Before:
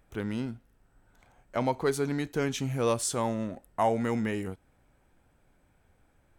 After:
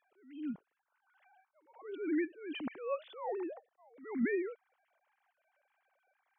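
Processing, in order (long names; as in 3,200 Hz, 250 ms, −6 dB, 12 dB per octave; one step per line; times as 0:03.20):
three sine waves on the formant tracks
level that may rise only so fast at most 110 dB per second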